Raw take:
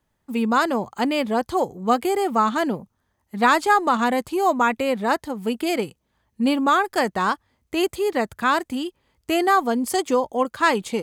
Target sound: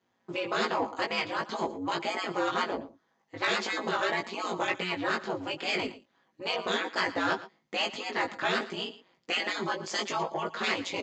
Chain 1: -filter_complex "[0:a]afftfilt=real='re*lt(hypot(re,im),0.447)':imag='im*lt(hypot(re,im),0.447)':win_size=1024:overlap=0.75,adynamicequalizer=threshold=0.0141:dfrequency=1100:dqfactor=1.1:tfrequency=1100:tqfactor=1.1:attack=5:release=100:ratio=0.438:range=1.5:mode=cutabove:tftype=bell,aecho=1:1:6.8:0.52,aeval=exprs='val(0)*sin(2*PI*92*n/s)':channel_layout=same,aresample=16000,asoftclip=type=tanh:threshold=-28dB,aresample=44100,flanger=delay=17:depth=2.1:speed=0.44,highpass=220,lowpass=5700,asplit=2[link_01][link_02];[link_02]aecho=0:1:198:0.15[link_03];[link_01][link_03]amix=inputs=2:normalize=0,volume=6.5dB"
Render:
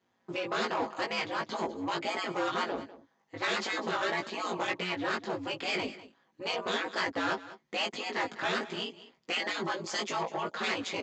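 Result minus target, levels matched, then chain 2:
echo 84 ms late; soft clipping: distortion +6 dB
-filter_complex "[0:a]afftfilt=real='re*lt(hypot(re,im),0.447)':imag='im*lt(hypot(re,im),0.447)':win_size=1024:overlap=0.75,adynamicequalizer=threshold=0.0141:dfrequency=1100:dqfactor=1.1:tfrequency=1100:tqfactor=1.1:attack=5:release=100:ratio=0.438:range=1.5:mode=cutabove:tftype=bell,aecho=1:1:6.8:0.52,aeval=exprs='val(0)*sin(2*PI*92*n/s)':channel_layout=same,aresample=16000,asoftclip=type=tanh:threshold=-22dB,aresample=44100,flanger=delay=17:depth=2.1:speed=0.44,highpass=220,lowpass=5700,asplit=2[link_01][link_02];[link_02]aecho=0:1:114:0.15[link_03];[link_01][link_03]amix=inputs=2:normalize=0,volume=6.5dB"

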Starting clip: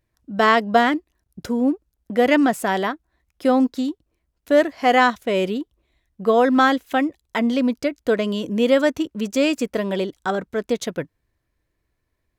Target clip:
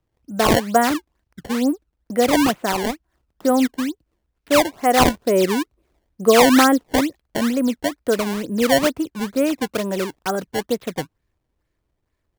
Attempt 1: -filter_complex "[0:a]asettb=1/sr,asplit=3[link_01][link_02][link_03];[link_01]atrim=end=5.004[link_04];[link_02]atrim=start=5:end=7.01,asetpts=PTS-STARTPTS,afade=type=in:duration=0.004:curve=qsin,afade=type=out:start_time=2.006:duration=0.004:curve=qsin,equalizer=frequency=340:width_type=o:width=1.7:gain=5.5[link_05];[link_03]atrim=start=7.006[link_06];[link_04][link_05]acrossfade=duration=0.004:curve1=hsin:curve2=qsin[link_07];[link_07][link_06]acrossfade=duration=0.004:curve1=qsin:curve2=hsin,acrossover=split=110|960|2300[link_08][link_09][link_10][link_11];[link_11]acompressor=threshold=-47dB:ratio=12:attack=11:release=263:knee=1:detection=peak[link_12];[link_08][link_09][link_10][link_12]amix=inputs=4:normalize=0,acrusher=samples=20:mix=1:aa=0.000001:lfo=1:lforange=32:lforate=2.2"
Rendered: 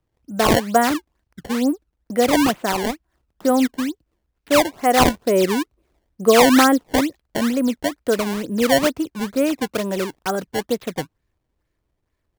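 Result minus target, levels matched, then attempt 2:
downward compressor: peak gain reduction −5.5 dB
-filter_complex "[0:a]asettb=1/sr,asplit=3[link_01][link_02][link_03];[link_01]atrim=end=5.004[link_04];[link_02]atrim=start=5:end=7.01,asetpts=PTS-STARTPTS,afade=type=in:duration=0.004:curve=qsin,afade=type=out:start_time=2.006:duration=0.004:curve=qsin,equalizer=frequency=340:width_type=o:width=1.7:gain=5.5[link_05];[link_03]atrim=start=7.006[link_06];[link_04][link_05]acrossfade=duration=0.004:curve1=hsin:curve2=qsin[link_07];[link_07][link_06]acrossfade=duration=0.004:curve1=qsin:curve2=hsin,acrossover=split=110|960|2300[link_08][link_09][link_10][link_11];[link_11]acompressor=threshold=-53dB:ratio=12:attack=11:release=263:knee=1:detection=peak[link_12];[link_08][link_09][link_10][link_12]amix=inputs=4:normalize=0,acrusher=samples=20:mix=1:aa=0.000001:lfo=1:lforange=32:lforate=2.2"

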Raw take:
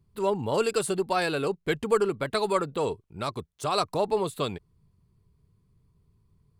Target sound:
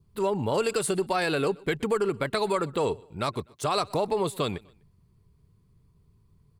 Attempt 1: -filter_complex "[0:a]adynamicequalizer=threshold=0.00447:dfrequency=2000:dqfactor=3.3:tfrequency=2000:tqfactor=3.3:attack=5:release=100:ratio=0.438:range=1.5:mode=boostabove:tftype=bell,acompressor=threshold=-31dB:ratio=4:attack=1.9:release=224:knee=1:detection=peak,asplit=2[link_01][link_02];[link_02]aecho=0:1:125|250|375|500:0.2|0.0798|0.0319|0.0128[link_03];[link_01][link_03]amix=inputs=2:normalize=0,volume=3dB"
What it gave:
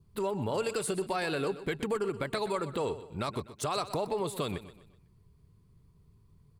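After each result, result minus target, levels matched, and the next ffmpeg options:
echo-to-direct +10.5 dB; downward compressor: peak gain reduction +6 dB
-filter_complex "[0:a]adynamicequalizer=threshold=0.00447:dfrequency=2000:dqfactor=3.3:tfrequency=2000:tqfactor=3.3:attack=5:release=100:ratio=0.438:range=1.5:mode=boostabove:tftype=bell,acompressor=threshold=-31dB:ratio=4:attack=1.9:release=224:knee=1:detection=peak,asplit=2[link_01][link_02];[link_02]aecho=0:1:125|250:0.0596|0.0238[link_03];[link_01][link_03]amix=inputs=2:normalize=0,volume=3dB"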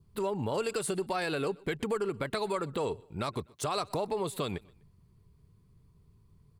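downward compressor: peak gain reduction +6 dB
-filter_complex "[0:a]adynamicequalizer=threshold=0.00447:dfrequency=2000:dqfactor=3.3:tfrequency=2000:tqfactor=3.3:attack=5:release=100:ratio=0.438:range=1.5:mode=boostabove:tftype=bell,acompressor=threshold=-23dB:ratio=4:attack=1.9:release=224:knee=1:detection=peak,asplit=2[link_01][link_02];[link_02]aecho=0:1:125|250:0.0596|0.0238[link_03];[link_01][link_03]amix=inputs=2:normalize=0,volume=3dB"

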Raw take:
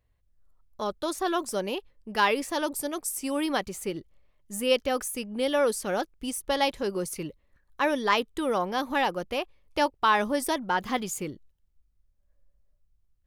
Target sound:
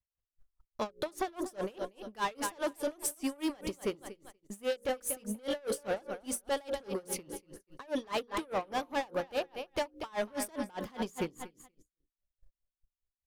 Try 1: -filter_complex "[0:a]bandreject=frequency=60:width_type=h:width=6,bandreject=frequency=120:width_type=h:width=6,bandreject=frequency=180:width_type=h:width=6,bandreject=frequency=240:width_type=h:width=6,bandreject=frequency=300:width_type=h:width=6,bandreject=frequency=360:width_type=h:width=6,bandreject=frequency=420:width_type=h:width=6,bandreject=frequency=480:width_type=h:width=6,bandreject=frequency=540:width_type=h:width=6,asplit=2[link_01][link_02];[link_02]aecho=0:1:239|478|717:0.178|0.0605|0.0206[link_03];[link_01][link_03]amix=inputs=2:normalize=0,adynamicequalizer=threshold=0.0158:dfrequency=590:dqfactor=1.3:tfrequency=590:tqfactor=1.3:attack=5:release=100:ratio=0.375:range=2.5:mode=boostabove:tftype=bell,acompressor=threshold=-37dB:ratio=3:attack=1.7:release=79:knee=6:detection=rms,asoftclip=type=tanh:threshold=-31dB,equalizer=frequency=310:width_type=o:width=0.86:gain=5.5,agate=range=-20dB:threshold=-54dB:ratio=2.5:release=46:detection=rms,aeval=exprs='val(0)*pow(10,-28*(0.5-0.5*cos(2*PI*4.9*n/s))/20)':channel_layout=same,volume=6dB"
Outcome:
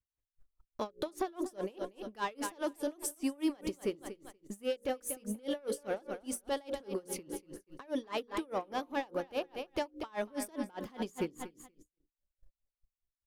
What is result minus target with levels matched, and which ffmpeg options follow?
downward compressor: peak gain reduction +6.5 dB; 250 Hz band +2.5 dB
-filter_complex "[0:a]bandreject=frequency=60:width_type=h:width=6,bandreject=frequency=120:width_type=h:width=6,bandreject=frequency=180:width_type=h:width=6,bandreject=frequency=240:width_type=h:width=6,bandreject=frequency=300:width_type=h:width=6,bandreject=frequency=360:width_type=h:width=6,bandreject=frequency=420:width_type=h:width=6,bandreject=frequency=480:width_type=h:width=6,bandreject=frequency=540:width_type=h:width=6,asplit=2[link_01][link_02];[link_02]aecho=0:1:239|478|717:0.178|0.0605|0.0206[link_03];[link_01][link_03]amix=inputs=2:normalize=0,adynamicequalizer=threshold=0.0158:dfrequency=590:dqfactor=1.3:tfrequency=590:tqfactor=1.3:attack=5:release=100:ratio=0.375:range=2.5:mode=boostabove:tftype=bell,acompressor=threshold=-27.5dB:ratio=3:attack=1.7:release=79:knee=6:detection=rms,asoftclip=type=tanh:threshold=-31dB,agate=range=-20dB:threshold=-54dB:ratio=2.5:release=46:detection=rms,aeval=exprs='val(0)*pow(10,-28*(0.5-0.5*cos(2*PI*4.9*n/s))/20)':channel_layout=same,volume=6dB"

